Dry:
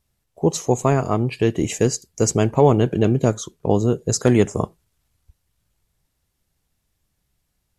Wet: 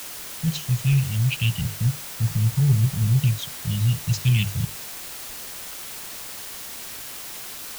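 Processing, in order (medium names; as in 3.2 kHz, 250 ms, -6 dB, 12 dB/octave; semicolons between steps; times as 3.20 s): elliptic band-stop 150–2900 Hz, stop band 40 dB; hum notches 50/100/150 Hz; waveshaping leveller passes 1; LFO low-pass square 0.31 Hz 960–2800 Hz; word length cut 6-bit, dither triangular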